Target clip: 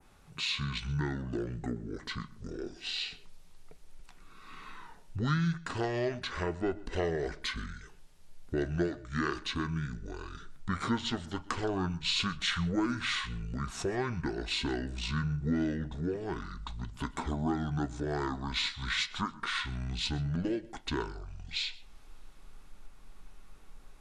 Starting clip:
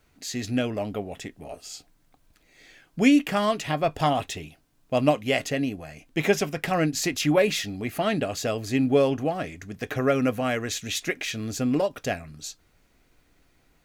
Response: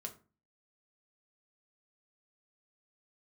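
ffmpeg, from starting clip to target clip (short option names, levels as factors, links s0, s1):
-filter_complex "[0:a]asubboost=boost=7:cutoff=61,acompressor=threshold=0.00708:ratio=2,asetrate=25442,aresample=44100,asplit=2[s0][s1];[1:a]atrim=start_sample=2205,asetrate=61740,aresample=44100,adelay=126[s2];[s1][s2]afir=irnorm=-1:irlink=0,volume=0.2[s3];[s0][s3]amix=inputs=2:normalize=0,adynamicequalizer=threshold=0.00178:dfrequency=4200:dqfactor=0.83:tfrequency=4200:tqfactor=0.83:attack=5:release=100:ratio=0.375:range=2.5:mode=boostabove:tftype=bell,volume=1.5"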